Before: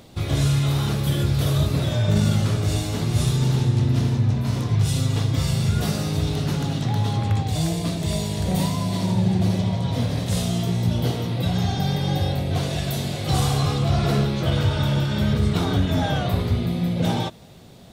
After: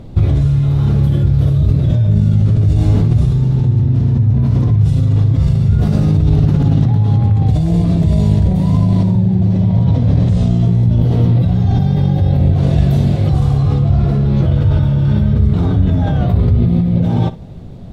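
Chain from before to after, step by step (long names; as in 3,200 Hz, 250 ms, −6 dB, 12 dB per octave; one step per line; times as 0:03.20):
in parallel at +2.5 dB: compressor whose output falls as the input rises −25 dBFS, ratio −0.5
0:01.49–0:02.77: on the sum: parametric band 980 Hz −4.5 dB 1.8 octaves
0:09.34–0:10.67: low-pass filter 8,700 Hz 24 dB per octave
spectral tilt −4 dB per octave
on a send: flutter between parallel walls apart 10.1 metres, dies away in 0.22 s
on the sum: level −6.5 dB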